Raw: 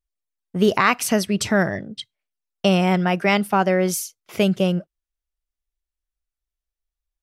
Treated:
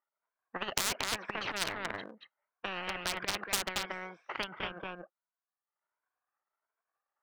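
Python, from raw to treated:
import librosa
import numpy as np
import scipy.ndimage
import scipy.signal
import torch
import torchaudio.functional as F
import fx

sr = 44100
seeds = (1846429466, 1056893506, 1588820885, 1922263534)

y = fx.spec_ripple(x, sr, per_octave=1.7, drift_hz=1.4, depth_db=14)
y = scipy.signal.sosfilt(scipy.signal.butter(4, 1400.0, 'lowpass', fs=sr, output='sos'), y)
y = y + 10.0 ** (-5.5 / 20.0) * np.pad(y, (int(230 * sr / 1000.0), 0))[:len(y)]
y = fx.transient(y, sr, attack_db=-8, sustain_db=9, at=(1.28, 3.44))
y = scipy.signal.sosfilt(scipy.signal.butter(2, 960.0, 'highpass', fs=sr, output='sos'), y)
y = np.clip(10.0 ** (18.5 / 20.0) * y, -1.0, 1.0) / 10.0 ** (18.5 / 20.0)
y = fx.transient(y, sr, attack_db=9, sustain_db=-10)
y = fx.spectral_comp(y, sr, ratio=10.0)
y = F.gain(torch.from_numpy(y), 3.0).numpy()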